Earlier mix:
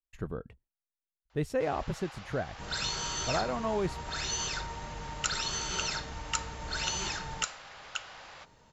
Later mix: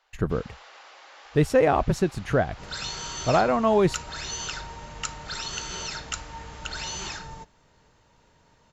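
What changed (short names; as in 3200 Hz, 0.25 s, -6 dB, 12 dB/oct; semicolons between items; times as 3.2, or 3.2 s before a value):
speech +11.0 dB; first sound: entry -1.30 s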